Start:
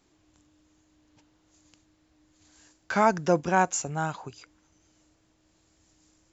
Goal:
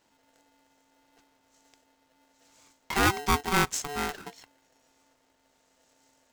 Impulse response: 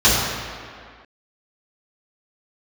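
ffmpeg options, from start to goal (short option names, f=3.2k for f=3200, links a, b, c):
-af "aeval=exprs='val(0)*sgn(sin(2*PI*580*n/s))':c=same,volume=-2dB"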